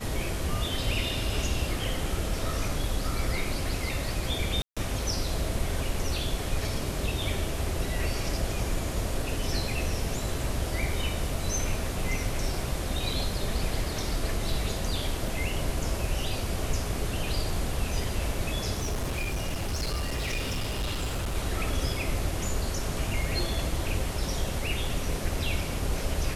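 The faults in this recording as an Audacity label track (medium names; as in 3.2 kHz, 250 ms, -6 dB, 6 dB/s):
4.620000	4.770000	dropout 146 ms
15.280000	15.280000	dropout 2.1 ms
18.770000	21.360000	clipped -26 dBFS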